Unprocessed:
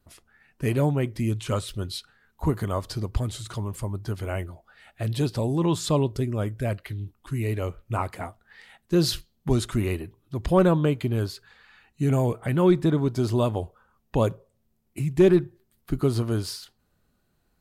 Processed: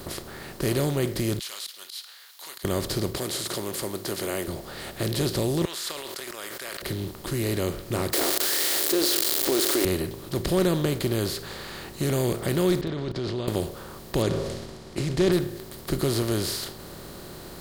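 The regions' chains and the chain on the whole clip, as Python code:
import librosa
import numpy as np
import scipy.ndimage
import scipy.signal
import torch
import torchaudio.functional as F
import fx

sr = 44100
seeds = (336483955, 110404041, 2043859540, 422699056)

y = fx.chain(x, sr, fx.ladder_highpass(hz=2700.0, resonance_pct=30),
    fx.peak_eq(hz=8000.0, db=-8.0, octaves=0.38),
    fx.auto_swell(attack_ms=200.0), at=(1.39, 2.65))
y = fx.chain(y, sr, fx.highpass(hz=480.0, slope=12),
    fx.peak_eq(hz=11000.0, db=5.5, octaves=1.8), at=(3.15, 4.48))
y = fx.chain(y, sr, fx.ladder_highpass(hz=1200.0, resonance_pct=35),
    fx.sustainer(db_per_s=78.0), at=(5.65, 6.82))
y = fx.chain(y, sr, fx.crossing_spikes(level_db=-24.5),
    fx.brickwall_highpass(low_hz=270.0),
    fx.env_flatten(amount_pct=70), at=(8.13, 9.85))
y = fx.chain(y, sr, fx.steep_lowpass(hz=4100.0, slope=36),
    fx.level_steps(step_db=18), at=(12.81, 13.48))
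y = fx.chain(y, sr, fx.lowpass(hz=6200.0, slope=24),
    fx.sustainer(db_per_s=92.0), at=(14.22, 15.32))
y = fx.bin_compress(y, sr, power=0.4)
y = fx.dynamic_eq(y, sr, hz=950.0, q=1.4, threshold_db=-36.0, ratio=4.0, max_db=-6)
y = F.gain(torch.from_numpy(y), -6.5).numpy()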